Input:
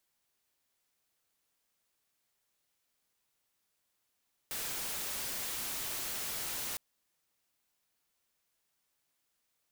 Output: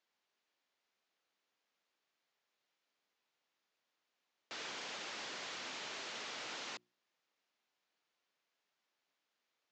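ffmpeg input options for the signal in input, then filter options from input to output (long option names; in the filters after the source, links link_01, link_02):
-f lavfi -i "anoisesrc=color=white:amplitude=0.0218:duration=2.26:sample_rate=44100:seed=1"
-af "bandreject=frequency=60:width_type=h:width=6,bandreject=frequency=120:width_type=h:width=6,bandreject=frequency=180:width_type=h:width=6,bandreject=frequency=240:width_type=h:width=6,bandreject=frequency=300:width_type=h:width=6,bandreject=frequency=360:width_type=h:width=6,aresample=16000,aeval=exprs='(mod(59.6*val(0)+1,2)-1)/59.6':channel_layout=same,aresample=44100,highpass=240,lowpass=4300"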